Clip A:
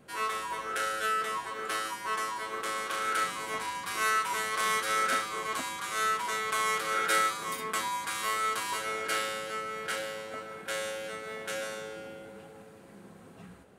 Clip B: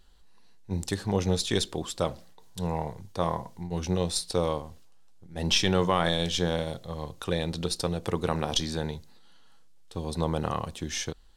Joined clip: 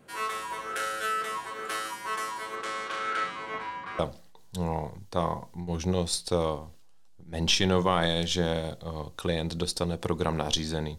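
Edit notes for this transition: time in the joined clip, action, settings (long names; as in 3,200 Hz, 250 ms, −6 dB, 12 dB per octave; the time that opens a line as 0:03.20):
clip A
0:02.55–0:03.99: low-pass filter 7,700 Hz → 1,800 Hz
0:03.99: continue with clip B from 0:02.02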